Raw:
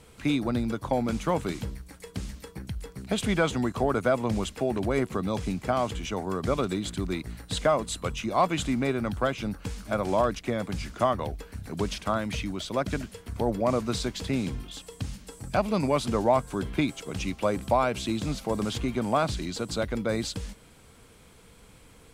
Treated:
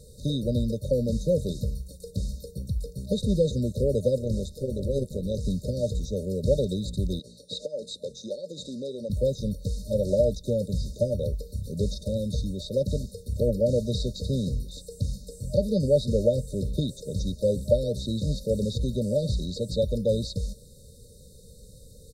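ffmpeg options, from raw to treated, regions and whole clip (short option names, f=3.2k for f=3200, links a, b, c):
-filter_complex "[0:a]asettb=1/sr,asplit=3[a][b][c];[a]atrim=end=4.184[d];[b]atrim=start=4.18:end=5.45,asetpts=PTS-STARTPTS,afade=t=in:d=0.004:c=qsin,afade=t=out:st=1.266:d=0.004:c=qsin,tremolo=f=150:d=0.667,acompressor=mode=upward:threshold=-39dB:ratio=2.5:attack=3.2:release=140:knee=2.83:detection=peak[e];[c]atrim=start=5.446[f];[d][e]acrossfade=d=0.004:c1=hsin:c2=qsin[g];[g][f]acrossfade=d=0.004:c1=qsin:c2=hsin,asettb=1/sr,asplit=3[h][i][j];[h]atrim=end=7.194[k];[i]atrim=start=7.19:end=9.1,asetpts=PTS-STARTPTS,afade=t=in:d=0.004:c=qsin,afade=t=out:st=1.906:d=0.004:c=qsin,highpass=330,lowpass=6.8k,acompressor=threshold=-29dB:ratio=6:attack=3.2:release=140:knee=1:detection=peak[l];[j]atrim=start=9.096[m];[k][l]acrossfade=d=0.004:c1=hsin:c2=qsin[n];[n][m]acrossfade=d=0.004:c1=qsin:c2=hsin,afftfilt=real='re*(1-between(b*sr/4096,610,3600))':imag='im*(1-between(b*sr/4096,610,3600))':win_size=4096:overlap=0.75,acrossover=split=4100[o][p];[p]acompressor=threshold=-51dB:ratio=4:attack=1:release=60[q];[o][q]amix=inputs=2:normalize=0,aecho=1:1:1.6:0.73,volume=2.5dB"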